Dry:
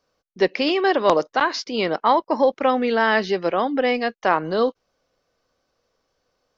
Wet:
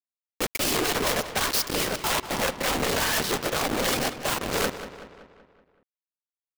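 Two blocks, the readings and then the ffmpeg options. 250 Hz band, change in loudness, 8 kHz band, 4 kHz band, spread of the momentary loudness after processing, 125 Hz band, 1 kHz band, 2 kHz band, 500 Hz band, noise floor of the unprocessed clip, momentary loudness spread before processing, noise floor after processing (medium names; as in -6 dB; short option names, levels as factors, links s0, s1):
-7.5 dB, -4.5 dB, no reading, +2.0 dB, 6 LU, +3.0 dB, -8.5 dB, -4.0 dB, -9.5 dB, -74 dBFS, 5 LU, under -85 dBFS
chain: -filter_complex "[0:a]aeval=exprs='(tanh(17.8*val(0)+0.45)-tanh(0.45))/17.8':c=same,afftfilt=real='hypot(re,im)*cos(2*PI*random(0))':imag='hypot(re,im)*sin(2*PI*random(1))':win_size=512:overlap=0.75,aemphasis=mode=production:type=50fm,acrossover=split=1200[s0][s1];[s0]aeval=exprs='sgn(val(0))*max(abs(val(0))-0.00335,0)':c=same[s2];[s2][s1]amix=inputs=2:normalize=0,acrusher=bits=5:mix=0:aa=0.000001,aeval=exprs='(mod(18.8*val(0)+1,2)-1)/18.8':c=same,asplit=2[s3][s4];[s4]adelay=189,lowpass=f=4200:p=1,volume=0.266,asplit=2[s5][s6];[s6]adelay=189,lowpass=f=4200:p=1,volume=0.54,asplit=2[s7][s8];[s8]adelay=189,lowpass=f=4200:p=1,volume=0.54,asplit=2[s9][s10];[s10]adelay=189,lowpass=f=4200:p=1,volume=0.54,asplit=2[s11][s12];[s12]adelay=189,lowpass=f=4200:p=1,volume=0.54,asplit=2[s13][s14];[s14]adelay=189,lowpass=f=4200:p=1,volume=0.54[s15];[s5][s7][s9][s11][s13][s15]amix=inputs=6:normalize=0[s16];[s3][s16]amix=inputs=2:normalize=0,volume=2.66"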